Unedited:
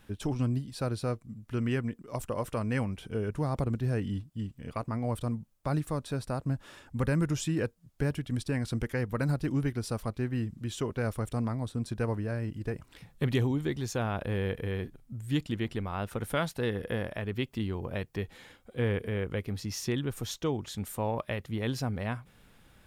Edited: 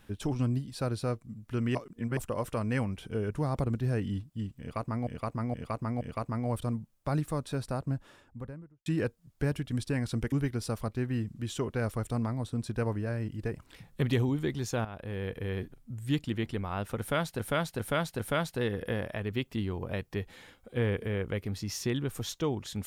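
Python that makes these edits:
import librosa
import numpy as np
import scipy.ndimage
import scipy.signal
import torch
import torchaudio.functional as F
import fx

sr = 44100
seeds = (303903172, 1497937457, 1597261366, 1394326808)

y = fx.studio_fade_out(x, sr, start_s=6.22, length_s=1.23)
y = fx.edit(y, sr, fx.reverse_span(start_s=1.75, length_s=0.42),
    fx.repeat(start_s=4.6, length_s=0.47, count=4),
    fx.cut(start_s=8.91, length_s=0.63),
    fx.fade_in_from(start_s=14.07, length_s=0.75, floor_db=-12.5),
    fx.repeat(start_s=16.21, length_s=0.4, count=4), tone=tone)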